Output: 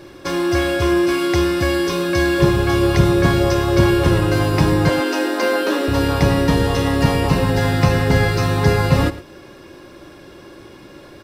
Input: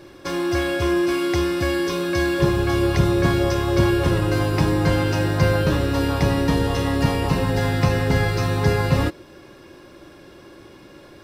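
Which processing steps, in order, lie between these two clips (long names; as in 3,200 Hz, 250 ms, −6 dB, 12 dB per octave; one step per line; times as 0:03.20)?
0:04.89–0:05.88: Butterworth high-pass 230 Hz 72 dB per octave
single-tap delay 110 ms −16 dB
level +4 dB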